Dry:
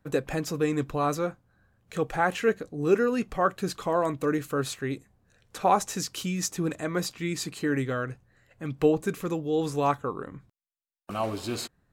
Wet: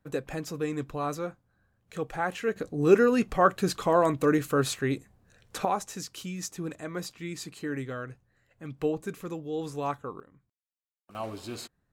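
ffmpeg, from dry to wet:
ffmpeg -i in.wav -af "asetnsamples=nb_out_samples=441:pad=0,asendcmd='2.56 volume volume 3dB;5.65 volume volume -6.5dB;10.2 volume volume -17dB;11.15 volume volume -6.5dB',volume=-5dB" out.wav

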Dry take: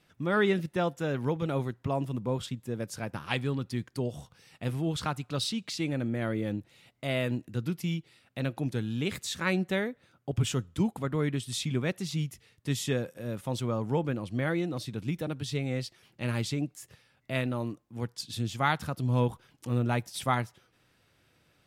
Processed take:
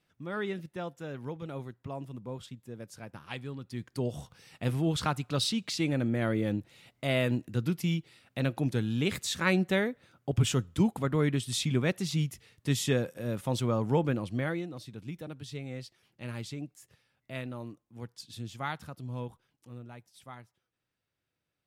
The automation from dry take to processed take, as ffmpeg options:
ffmpeg -i in.wav -af "volume=2dB,afade=type=in:start_time=3.65:duration=0.54:silence=0.281838,afade=type=out:start_time=14.16:duration=0.53:silence=0.316228,afade=type=out:start_time=18.57:duration=1.35:silence=0.266073" out.wav

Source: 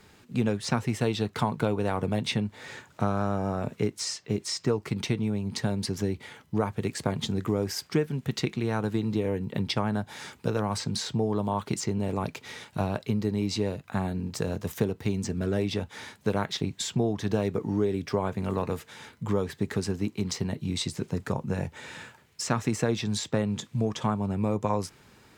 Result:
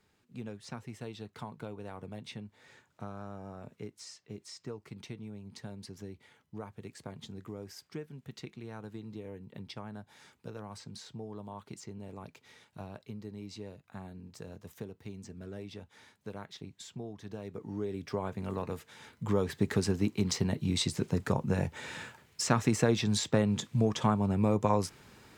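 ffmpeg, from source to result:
ffmpeg -i in.wav -af "afade=type=in:start_time=17.4:duration=0.78:silence=0.354813,afade=type=in:start_time=19:duration=0.57:silence=0.446684" out.wav

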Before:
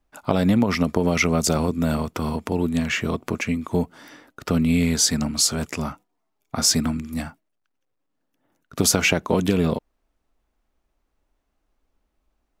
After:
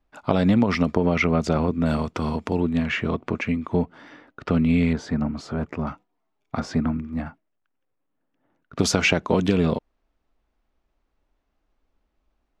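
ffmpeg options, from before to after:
ffmpeg -i in.wav -af "asetnsamples=nb_out_samples=441:pad=0,asendcmd='0.96 lowpass f 2700;1.86 lowpass f 5400;2.6 lowpass f 3000;4.93 lowpass f 1400;5.87 lowpass f 3700;6.6 lowpass f 1600;7.26 lowpass f 2600;8.79 lowpass f 5000',lowpass=4600" out.wav

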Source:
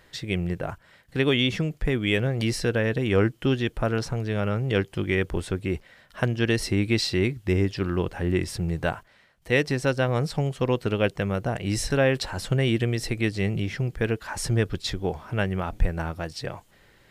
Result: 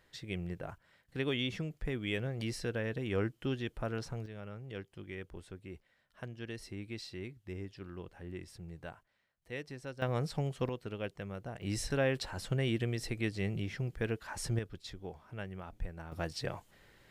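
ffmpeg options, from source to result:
ffmpeg -i in.wav -af "asetnsamples=nb_out_samples=441:pad=0,asendcmd='4.26 volume volume -20dB;10.02 volume volume -9dB;10.69 volume volume -16dB;11.62 volume volume -9.5dB;14.59 volume volume -17dB;16.12 volume volume -5dB',volume=-12dB" out.wav

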